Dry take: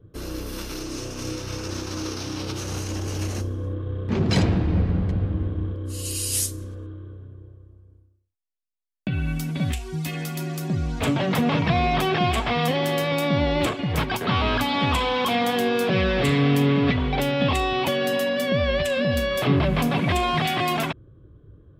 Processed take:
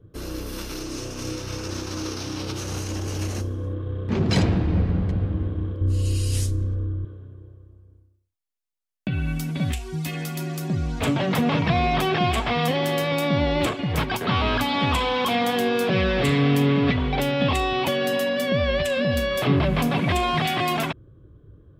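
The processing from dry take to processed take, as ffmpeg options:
-filter_complex "[0:a]asettb=1/sr,asplit=3[a][b][c];[a]atrim=end=5.814[d];[b]atrim=start=5.81:end=7.05,asetpts=PTS-STARTPTS,afade=t=in:d=0.004:c=qsin,afade=t=out:st=1.236:d=0.004:c=qsin,aemphasis=mode=reproduction:type=bsi[e];[c]atrim=start=7.046[f];[d][e]acrossfade=d=0.004:c1=hsin:c2=qsin[g];[g][f]acrossfade=d=0.004:c1=qsin:c2=hsin"

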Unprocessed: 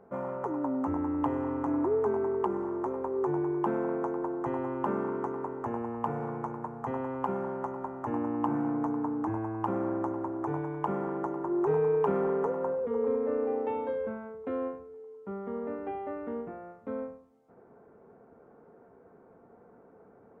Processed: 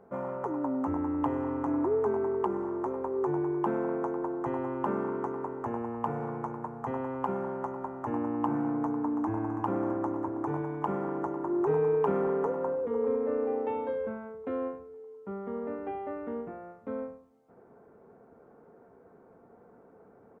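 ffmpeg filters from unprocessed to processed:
-filter_complex "[0:a]asplit=2[a][b];[b]afade=t=in:st=8.71:d=0.01,afade=t=out:st=9.3:d=0.01,aecho=0:1:330|660|990|1320|1650|1980|2310|2640|2970|3300|3630|3960:0.316228|0.268794|0.228475|0.194203|0.165073|0.140312|0.119265|0.101375|0.0861691|0.0732437|0.0622572|0.0529186[c];[a][c]amix=inputs=2:normalize=0"

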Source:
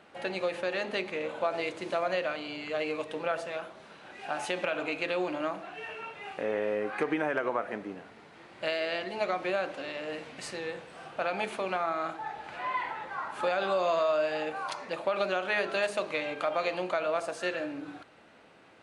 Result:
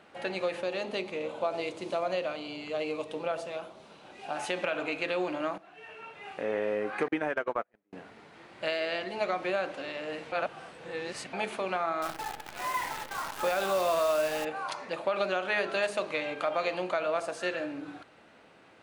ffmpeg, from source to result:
-filter_complex "[0:a]asettb=1/sr,asplit=3[a][b][c];[a]atrim=end=0.624[d];[b]atrim=start=0.62:end=4.36,asetpts=PTS-STARTPTS,afade=t=in:d=0.004:c=qsin,afade=t=out:st=3.736:d=0.004:c=qsin,equalizer=f=1.7k:t=o:w=0.76:g=-8.5[e];[c]atrim=start=4.356[f];[d][e]acrossfade=d=0.004:c1=hsin:c2=qsin[g];[g][f]acrossfade=d=0.004:c1=qsin:c2=hsin,asettb=1/sr,asplit=3[h][i][j];[h]atrim=end=7.084[k];[i]atrim=start=7.08:end=7.93,asetpts=PTS-STARTPTS,afade=t=in:d=0.004:c=qsin,afade=t=out:st=0.846:d=0.004:c=qsin,agate=range=-40dB:threshold=-31dB:ratio=16:release=100:detection=peak[l];[j]atrim=start=7.926[m];[k][l]acrossfade=d=0.004:c1=hsin:c2=qsin[n];[n][m]acrossfade=d=0.004:c1=qsin:c2=hsin,asettb=1/sr,asplit=3[o][p][q];[o]atrim=end=12.024[r];[p]atrim=start=12.02:end=14.45,asetpts=PTS-STARTPTS,afade=t=in:d=0.004:c=qsin,afade=t=out:st=2.426:d=0.004:c=qsin,acrusher=bits=7:dc=4:mix=0:aa=0.000001[s];[q]atrim=start=14.446[t];[r][s]acrossfade=d=0.004:c1=hsin:c2=qsin[u];[u][t]acrossfade=d=0.004:c1=qsin:c2=hsin,asplit=4[v][w][x][y];[v]atrim=end=5.58,asetpts=PTS-STARTPTS,afade=t=out:st=5.576:d=0.004:c=hsin:silence=0.199526[z];[w]atrim=start=5.58:end=10.322,asetpts=PTS-STARTPTS,afade=t=in:d=0.96:silence=0.199526[aa];[x]atrim=start=10.318:end=11.332,asetpts=PTS-STARTPTS,areverse[ab];[y]atrim=start=11.328[ac];[z][aa]concat=n=2:v=0:a=1[ad];[ad][ab]acrossfade=d=0.004:c1=hsin:c2=hsin[ae];[ae][ac]acrossfade=d=0.004:c1=hsin:c2=hsin"

